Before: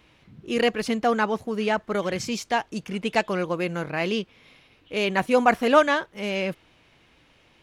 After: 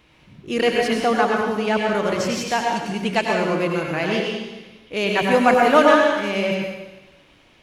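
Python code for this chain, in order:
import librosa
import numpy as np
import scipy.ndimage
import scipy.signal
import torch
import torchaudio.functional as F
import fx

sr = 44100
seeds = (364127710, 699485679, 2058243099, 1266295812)

y = fx.rev_plate(x, sr, seeds[0], rt60_s=1.1, hf_ratio=1.0, predelay_ms=80, drr_db=-0.5)
y = y * librosa.db_to_amplitude(1.5)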